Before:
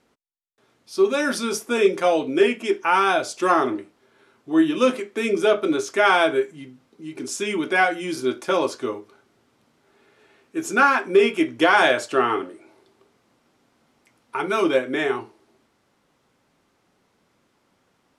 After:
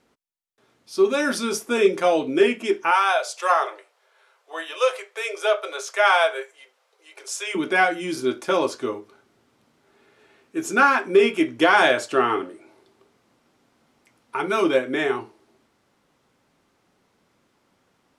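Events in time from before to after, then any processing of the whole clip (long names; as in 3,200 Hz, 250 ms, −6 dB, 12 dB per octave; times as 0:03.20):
0:02.91–0:07.55: Butterworth high-pass 480 Hz 48 dB per octave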